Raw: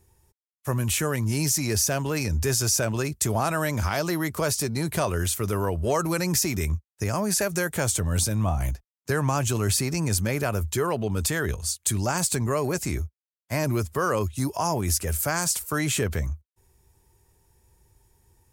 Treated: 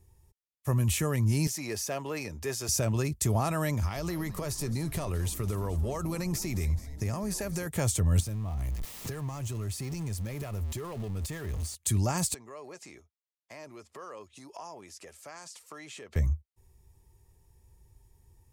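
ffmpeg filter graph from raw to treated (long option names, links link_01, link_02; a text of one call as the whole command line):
ffmpeg -i in.wav -filter_complex "[0:a]asettb=1/sr,asplit=3[link_01][link_02][link_03];[link_01]atrim=end=1.474[link_04];[link_02]atrim=start=1.47:end=2.69,asetpts=PTS-STARTPTS,afade=type=in:duration=0.004:curve=qsin,afade=type=out:start_time=1.216:duration=0.004:curve=qsin,highpass=110,bass=frequency=250:gain=-14,treble=frequency=4000:gain=-7[link_05];[link_03]atrim=start=2.686[link_06];[link_04][link_05]acrossfade=duration=0.004:curve1=hsin:curve2=qsin[link_07];[link_07][link_06]acrossfade=duration=0.004:curve1=qsin:curve2=hsin,asettb=1/sr,asplit=3[link_08][link_09][link_10];[link_08]atrim=end=3.744[link_11];[link_09]atrim=start=3.74:end=7.67,asetpts=PTS-STARTPTS,afade=type=in:duration=0.004:curve=qsin,afade=type=out:start_time=3.926:duration=0.004:curve=qsin,acompressor=threshold=-26dB:ratio=4:attack=3.2:release=140:knee=1:detection=peak,asplit=8[link_12][link_13][link_14][link_15][link_16][link_17][link_18][link_19];[link_13]adelay=213,afreqshift=-150,volume=-15.5dB[link_20];[link_14]adelay=426,afreqshift=-300,volume=-19.2dB[link_21];[link_15]adelay=639,afreqshift=-450,volume=-23dB[link_22];[link_16]adelay=852,afreqshift=-600,volume=-26.7dB[link_23];[link_17]adelay=1065,afreqshift=-750,volume=-30.5dB[link_24];[link_18]adelay=1278,afreqshift=-900,volume=-34.2dB[link_25];[link_19]adelay=1491,afreqshift=-1050,volume=-38dB[link_26];[link_12][link_20][link_21][link_22][link_23][link_24][link_25][link_26]amix=inputs=8:normalize=0,atrim=end_sample=173313[link_27];[link_10]atrim=start=7.666[link_28];[link_11][link_27]acrossfade=duration=0.004:curve1=hsin:curve2=qsin[link_29];[link_29][link_28]acrossfade=duration=0.004:curve1=qsin:curve2=hsin,asettb=1/sr,asplit=3[link_30][link_31][link_32];[link_30]atrim=end=8.204[link_33];[link_31]atrim=start=8.2:end=11.75,asetpts=PTS-STARTPTS,afade=type=in:duration=0.004:curve=qsin,afade=type=out:start_time=3.546:duration=0.004:curve=qsin,aeval=exprs='val(0)+0.5*0.0447*sgn(val(0))':channel_layout=same,acompressor=threshold=-32dB:ratio=5:attack=3.2:release=140:knee=1:detection=peak[link_34];[link_32]atrim=start=11.746[link_35];[link_33][link_34]acrossfade=duration=0.004:curve1=hsin:curve2=qsin[link_36];[link_36][link_35]acrossfade=duration=0.004:curve1=qsin:curve2=hsin,asettb=1/sr,asplit=3[link_37][link_38][link_39];[link_37]atrim=end=12.344[link_40];[link_38]atrim=start=12.34:end=16.16,asetpts=PTS-STARTPTS,afade=type=in:duration=0.004:curve=qsin,afade=type=out:start_time=3.816:duration=0.004:curve=qsin,acompressor=threshold=-34dB:ratio=4:attack=3.2:release=140:knee=1:detection=peak,highpass=430,lowpass=6100[link_41];[link_39]atrim=start=16.156[link_42];[link_40][link_41]acrossfade=duration=0.004:curve1=hsin:curve2=qsin[link_43];[link_43][link_42]acrossfade=duration=0.004:curve1=qsin:curve2=hsin,lowshelf=frequency=160:gain=9.5,bandreject=frequency=1500:width=7.9,volume=-5.5dB" out.wav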